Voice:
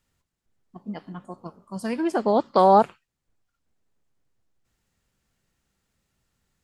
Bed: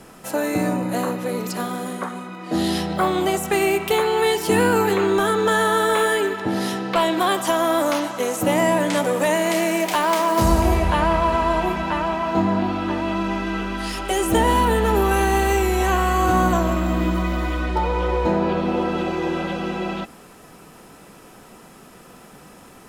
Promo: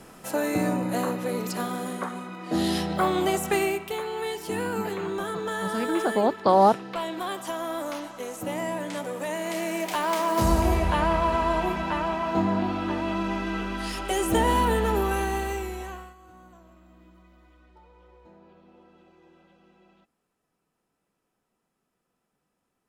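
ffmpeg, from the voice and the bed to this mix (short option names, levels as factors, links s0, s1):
-filter_complex "[0:a]adelay=3900,volume=0.794[s0];[1:a]volume=1.58,afade=t=out:st=3.53:d=0.32:silence=0.375837,afade=t=in:st=9.25:d=1.27:silence=0.421697,afade=t=out:st=14.72:d=1.43:silence=0.0354813[s1];[s0][s1]amix=inputs=2:normalize=0"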